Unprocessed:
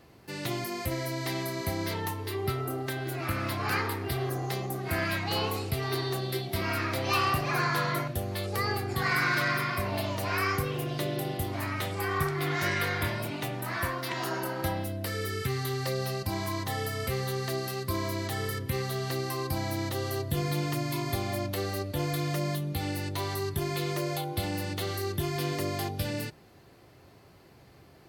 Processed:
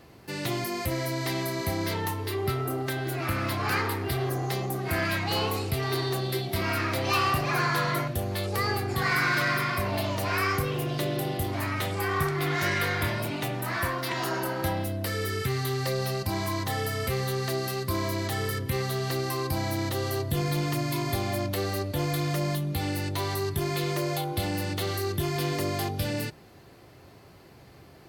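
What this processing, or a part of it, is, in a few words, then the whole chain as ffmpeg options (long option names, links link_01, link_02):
parallel distortion: -filter_complex "[0:a]asplit=2[link_01][link_02];[link_02]asoftclip=type=hard:threshold=-32.5dB,volume=-5dB[link_03];[link_01][link_03]amix=inputs=2:normalize=0"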